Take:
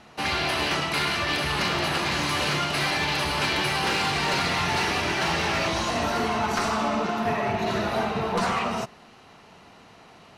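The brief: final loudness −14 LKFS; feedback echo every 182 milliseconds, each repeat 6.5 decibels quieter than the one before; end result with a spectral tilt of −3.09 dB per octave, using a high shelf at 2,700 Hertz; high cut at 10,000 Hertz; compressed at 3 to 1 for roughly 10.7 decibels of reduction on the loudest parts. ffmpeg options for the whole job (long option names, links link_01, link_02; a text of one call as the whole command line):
ffmpeg -i in.wav -af "lowpass=10000,highshelf=frequency=2700:gain=-8.5,acompressor=threshold=-38dB:ratio=3,aecho=1:1:182|364|546|728|910|1092:0.473|0.222|0.105|0.0491|0.0231|0.0109,volume=22dB" out.wav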